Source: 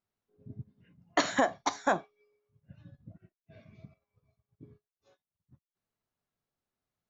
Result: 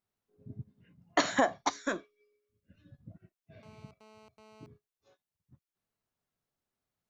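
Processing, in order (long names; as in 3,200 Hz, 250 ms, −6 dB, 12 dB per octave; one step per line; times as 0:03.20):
0:01.70–0:02.91: phaser with its sweep stopped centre 330 Hz, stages 4
0:03.63–0:04.66: phone interference −57 dBFS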